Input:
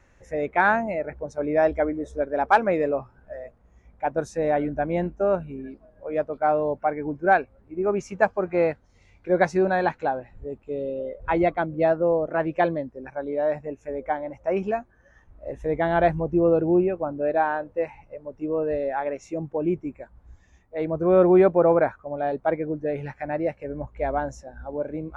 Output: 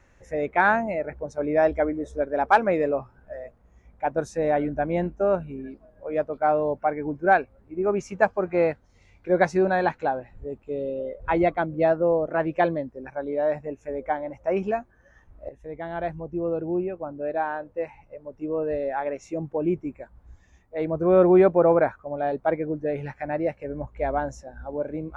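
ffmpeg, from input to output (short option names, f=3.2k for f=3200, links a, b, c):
-filter_complex "[0:a]asplit=2[a][b];[a]atrim=end=15.49,asetpts=PTS-STARTPTS,afade=t=out:st=15.486:d=0.004:c=hsin:silence=0.223872[c];[b]atrim=start=15.49,asetpts=PTS-STARTPTS,afade=t=in:d=3.92:silence=0.223872[d];[c][d]concat=n=2:v=0:a=1"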